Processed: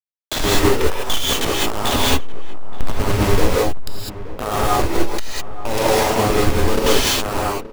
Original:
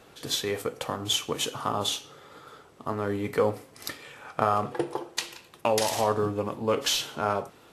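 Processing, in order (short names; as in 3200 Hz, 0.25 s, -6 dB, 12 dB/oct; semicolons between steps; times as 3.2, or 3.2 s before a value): level-crossing sampler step -20.5 dBFS; in parallel at -8.5 dB: wrapped overs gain 10.5 dB; on the sum: limiter -19.5 dBFS, peak gain reduction 11.5 dB; outdoor echo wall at 150 m, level -15 dB; non-linear reverb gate 0.23 s rising, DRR -6.5 dB; gain +5.5 dB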